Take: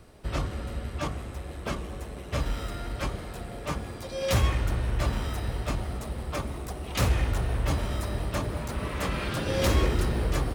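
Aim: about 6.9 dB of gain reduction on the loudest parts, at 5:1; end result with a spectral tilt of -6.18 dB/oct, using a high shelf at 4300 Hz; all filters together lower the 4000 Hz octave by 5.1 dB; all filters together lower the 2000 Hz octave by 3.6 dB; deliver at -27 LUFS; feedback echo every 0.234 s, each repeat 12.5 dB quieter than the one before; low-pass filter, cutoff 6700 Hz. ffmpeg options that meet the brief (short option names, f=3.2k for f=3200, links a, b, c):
-af "lowpass=6.7k,equalizer=f=2k:t=o:g=-3,equalizer=f=4k:t=o:g=-3,highshelf=f=4.3k:g=-4,acompressor=threshold=-26dB:ratio=5,aecho=1:1:234|468|702:0.237|0.0569|0.0137,volume=6.5dB"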